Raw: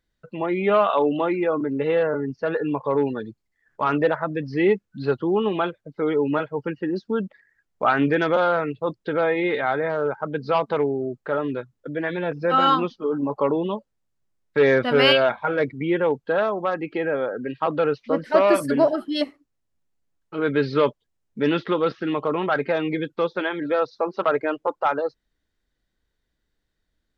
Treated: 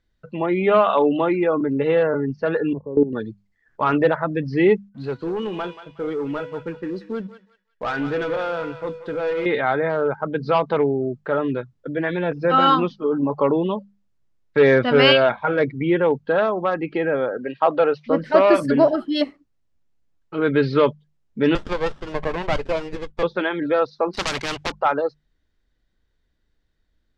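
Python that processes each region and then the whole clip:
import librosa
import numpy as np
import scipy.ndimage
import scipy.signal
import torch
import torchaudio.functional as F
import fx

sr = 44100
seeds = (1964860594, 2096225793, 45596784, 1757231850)

y = fx.chain(x, sr, fx.lowpass_res(hz=360.0, q=2.2),
    fx.level_steps(step_db=16), at=(2.73, 3.13))
y = fx.chain(y, sr, fx.comb_fb(f0_hz=490.0, decay_s=0.62, harmonics='all', damping=0.0, mix_pct=80),
    fx.leveller(passes=2),
    fx.echo_thinned(ms=182, feedback_pct=34, hz=1200.0, wet_db=-9), at=(4.89, 9.46))
y = fx.chain(y, sr, fx.highpass(hz=410.0, slope=6),
    fx.peak_eq(hz=680.0, db=7.5, octaves=0.83), at=(17.37, 18.05))
y = fx.chain(y, sr, fx.highpass(hz=500.0, slope=24),
    fx.running_max(window=17), at=(21.55, 23.23))
y = fx.chain(y, sr, fx.high_shelf(hz=3700.0, db=-4.0),
    fx.leveller(passes=2),
    fx.spectral_comp(ratio=4.0), at=(24.13, 24.72))
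y = scipy.signal.sosfilt(scipy.signal.butter(2, 6200.0, 'lowpass', fs=sr, output='sos'), y)
y = fx.low_shelf(y, sr, hz=160.0, db=6.5)
y = fx.hum_notches(y, sr, base_hz=50, count=4)
y = F.gain(torch.from_numpy(y), 2.0).numpy()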